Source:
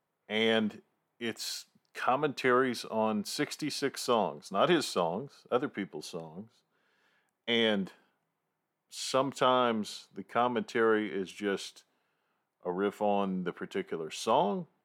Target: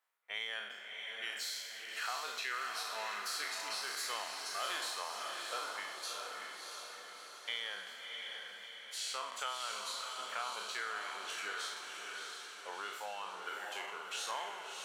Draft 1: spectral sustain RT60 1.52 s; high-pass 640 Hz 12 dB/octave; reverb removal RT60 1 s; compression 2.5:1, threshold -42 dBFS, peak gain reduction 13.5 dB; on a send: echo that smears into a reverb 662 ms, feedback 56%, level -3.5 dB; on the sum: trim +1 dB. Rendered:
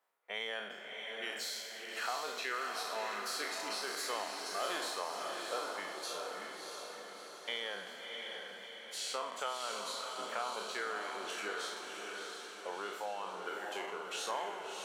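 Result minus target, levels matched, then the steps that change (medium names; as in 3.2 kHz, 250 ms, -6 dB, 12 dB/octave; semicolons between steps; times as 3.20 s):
500 Hz band +7.0 dB
change: high-pass 1.3 kHz 12 dB/octave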